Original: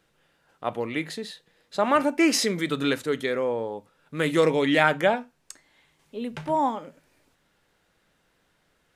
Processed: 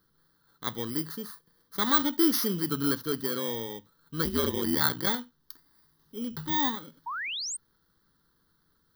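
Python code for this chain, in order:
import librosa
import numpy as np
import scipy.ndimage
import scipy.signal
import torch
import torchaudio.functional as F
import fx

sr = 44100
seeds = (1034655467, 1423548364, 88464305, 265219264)

y = fx.bit_reversed(x, sr, seeds[0], block=16)
y = fx.ring_mod(y, sr, carrier_hz=fx.line((4.24, 100.0), (5.06, 23.0)), at=(4.24, 5.06), fade=0.02)
y = fx.fixed_phaser(y, sr, hz=2400.0, stages=6)
y = fx.spec_paint(y, sr, seeds[1], shape='rise', start_s=7.06, length_s=0.51, low_hz=880.0, high_hz=9000.0, level_db=-34.0)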